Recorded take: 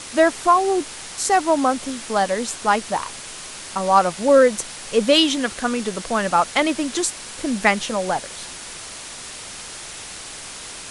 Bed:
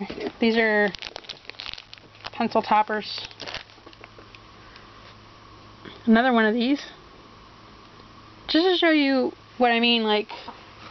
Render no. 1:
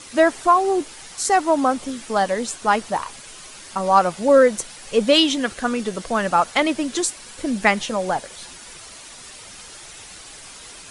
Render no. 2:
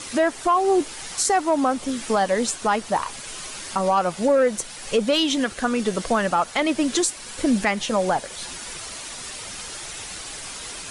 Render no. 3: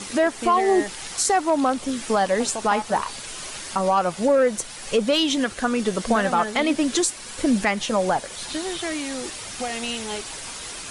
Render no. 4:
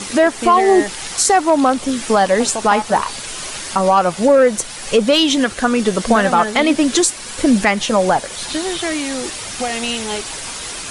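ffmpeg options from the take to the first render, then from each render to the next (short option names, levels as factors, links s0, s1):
-af "afftdn=nr=8:nf=-36"
-af "acontrast=34,alimiter=limit=0.266:level=0:latency=1:release=413"
-filter_complex "[1:a]volume=0.316[s0];[0:a][s0]amix=inputs=2:normalize=0"
-af "volume=2.24"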